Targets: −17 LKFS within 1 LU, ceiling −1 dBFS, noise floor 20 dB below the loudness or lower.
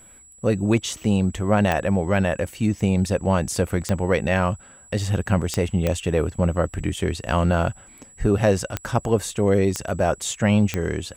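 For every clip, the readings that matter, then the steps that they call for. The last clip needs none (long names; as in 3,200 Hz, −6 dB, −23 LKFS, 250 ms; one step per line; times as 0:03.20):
number of clicks 7; interfering tone 7,800 Hz; level of the tone −47 dBFS; integrated loudness −22.5 LKFS; sample peak −7.5 dBFS; target loudness −17.0 LKFS
→ click removal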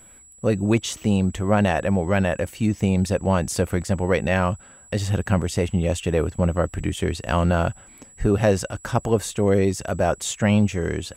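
number of clicks 0; interfering tone 7,800 Hz; level of the tone −47 dBFS
→ notch filter 7,800 Hz, Q 30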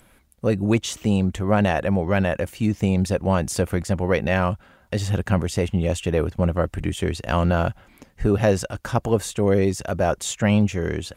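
interfering tone none found; integrated loudness −22.5 LKFS; sample peak −7.5 dBFS; target loudness −17.0 LKFS
→ level +5.5 dB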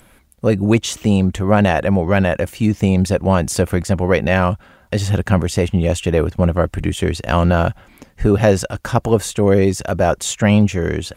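integrated loudness −17.0 LKFS; sample peak −2.0 dBFS; background noise floor −50 dBFS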